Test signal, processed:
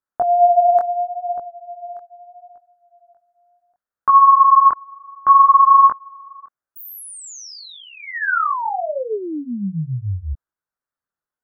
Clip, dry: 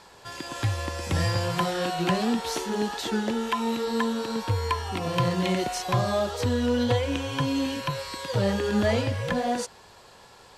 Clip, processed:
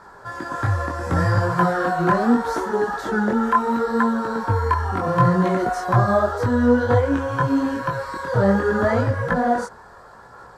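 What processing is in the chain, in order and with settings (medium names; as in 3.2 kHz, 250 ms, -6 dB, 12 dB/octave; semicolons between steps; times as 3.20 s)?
chorus voices 2, 0.72 Hz, delay 21 ms, depth 4.8 ms; resonant high shelf 2 kHz -10.5 dB, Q 3; trim +8.5 dB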